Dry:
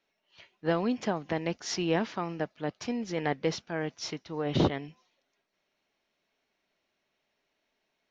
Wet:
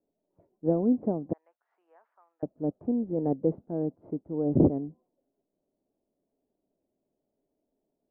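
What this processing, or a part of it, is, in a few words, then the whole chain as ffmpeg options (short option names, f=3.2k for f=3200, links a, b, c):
under water: -filter_complex "[0:a]lowpass=f=620:w=0.5412,lowpass=f=620:w=1.3066,equalizer=f=280:t=o:w=0.43:g=6,asettb=1/sr,asplit=3[a][b][c];[a]atrim=end=1.334[d];[b]atrim=start=1.33:end=2.43,asetpts=PTS-STARTPTS,afade=t=in:d=0.004:c=qsin,afade=t=out:st=1.096:d=0.004:c=qsin,highpass=f=1.4k:w=0.5412,highpass=f=1.4k:w=1.3066[e];[c]atrim=start=2.426[f];[d][e]acrossfade=d=0.004:c1=hsin:c2=qsin[g];[g][f]acrossfade=d=0.004:c1=qsin:c2=hsin,volume=2.5dB"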